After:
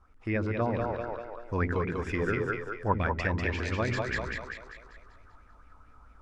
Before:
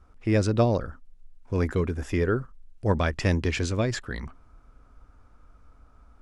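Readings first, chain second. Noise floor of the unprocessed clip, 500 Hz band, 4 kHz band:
-57 dBFS, -4.0 dB, -6.0 dB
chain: low-pass that closes with the level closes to 2.2 kHz, closed at -18.5 dBFS; two-band feedback delay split 370 Hz, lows 87 ms, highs 195 ms, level -3 dB; gain riding within 3 dB 0.5 s; sweeping bell 4.5 Hz 880–2400 Hz +12 dB; trim -7 dB

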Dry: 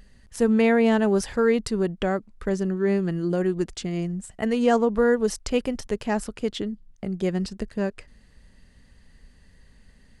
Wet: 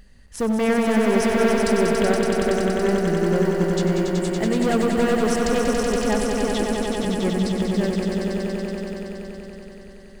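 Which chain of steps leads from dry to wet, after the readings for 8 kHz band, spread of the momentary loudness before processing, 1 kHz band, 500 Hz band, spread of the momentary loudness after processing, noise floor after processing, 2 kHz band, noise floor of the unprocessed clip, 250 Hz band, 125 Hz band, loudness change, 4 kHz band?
+7.0 dB, 11 LU, +4.5 dB, +3.5 dB, 11 LU, -42 dBFS, +4.5 dB, -55 dBFS, +3.5 dB, +5.0 dB, +3.0 dB, +6.5 dB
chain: block-companded coder 7-bit; overload inside the chain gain 20 dB; echo with a slow build-up 94 ms, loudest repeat 5, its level -5.5 dB; trim +1.5 dB

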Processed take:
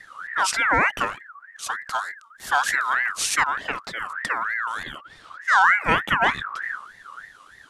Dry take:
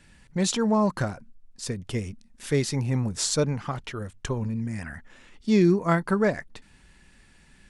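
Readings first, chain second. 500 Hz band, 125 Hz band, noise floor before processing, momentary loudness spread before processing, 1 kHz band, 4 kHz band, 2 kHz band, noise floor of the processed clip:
-7.5 dB, -14.0 dB, -57 dBFS, 16 LU, +11.5 dB, +4.0 dB, +16.0 dB, -51 dBFS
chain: wind noise 94 Hz -41 dBFS; ring modulator with a swept carrier 1.5 kHz, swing 25%, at 3.3 Hz; trim +5 dB

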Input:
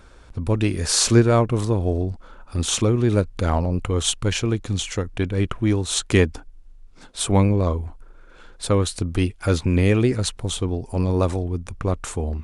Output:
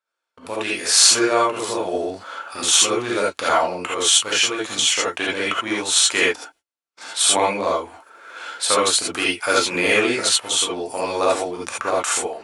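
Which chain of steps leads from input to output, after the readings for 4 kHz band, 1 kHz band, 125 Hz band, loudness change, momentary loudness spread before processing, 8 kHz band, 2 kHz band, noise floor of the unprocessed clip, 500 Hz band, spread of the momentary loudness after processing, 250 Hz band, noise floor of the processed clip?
+9.5 dB, +8.0 dB, -22.0 dB, +3.5 dB, 10 LU, +9.0 dB, +10.0 dB, -46 dBFS, +1.5 dB, 12 LU, -6.0 dB, -82 dBFS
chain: high-pass 790 Hz 12 dB/octave; level rider gain up to 13.5 dB; gate -50 dBFS, range -32 dB; gated-style reverb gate 100 ms rising, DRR -5 dB; in parallel at 0 dB: compression, threshold -27 dBFS, peak gain reduction 21.5 dB; on the sum: trim -6.5 dB

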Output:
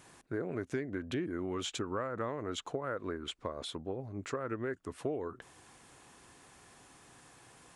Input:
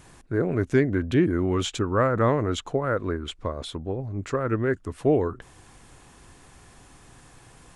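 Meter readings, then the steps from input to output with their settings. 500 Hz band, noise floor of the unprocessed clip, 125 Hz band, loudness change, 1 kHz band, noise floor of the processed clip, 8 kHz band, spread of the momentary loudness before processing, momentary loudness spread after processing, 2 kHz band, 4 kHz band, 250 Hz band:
-12.5 dB, -53 dBFS, -17.0 dB, -13.0 dB, -11.5 dB, -60 dBFS, -6.5 dB, 10 LU, 20 LU, -11.0 dB, -6.5 dB, -13.5 dB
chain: high-pass 250 Hz 6 dB/octave; compression 6:1, threshold -28 dBFS, peak gain reduction 11 dB; trim -4.5 dB

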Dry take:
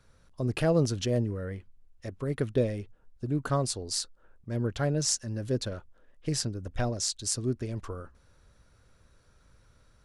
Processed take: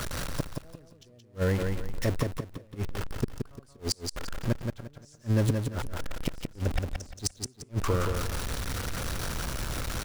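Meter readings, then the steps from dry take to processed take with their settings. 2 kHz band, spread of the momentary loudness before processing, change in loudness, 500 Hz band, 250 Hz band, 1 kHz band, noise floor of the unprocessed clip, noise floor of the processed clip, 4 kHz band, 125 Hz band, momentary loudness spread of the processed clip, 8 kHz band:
+4.5 dB, 15 LU, -2.0 dB, -3.0 dB, -1.5 dB, +1.5 dB, -62 dBFS, -56 dBFS, -1.5 dB, +1.0 dB, 12 LU, -4.5 dB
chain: jump at every zero crossing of -36 dBFS; inverted gate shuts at -23 dBFS, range -39 dB; feedback delay 174 ms, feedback 29%, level -5 dB; trim +8 dB

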